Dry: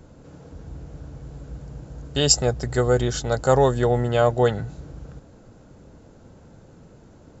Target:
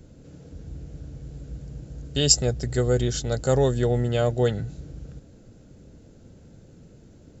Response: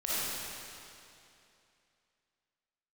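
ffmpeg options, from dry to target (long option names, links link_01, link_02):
-af "equalizer=frequency=1000:width_type=o:width=1.3:gain=-12.5"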